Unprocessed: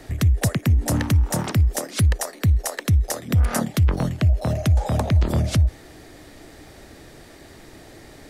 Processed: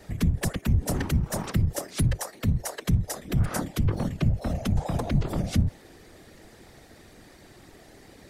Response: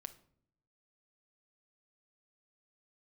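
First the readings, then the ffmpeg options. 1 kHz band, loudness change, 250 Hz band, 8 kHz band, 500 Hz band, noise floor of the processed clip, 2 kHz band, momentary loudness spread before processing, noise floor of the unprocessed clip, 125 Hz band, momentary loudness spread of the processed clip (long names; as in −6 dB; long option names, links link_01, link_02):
−5.5 dB, −6.0 dB, −3.0 dB, −6.0 dB, −5.5 dB, −52 dBFS, −6.0 dB, 2 LU, −46 dBFS, −6.5 dB, 2 LU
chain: -af "afftfilt=real='hypot(re,im)*cos(2*PI*random(0))':imag='hypot(re,im)*sin(2*PI*random(1))':win_size=512:overlap=0.75"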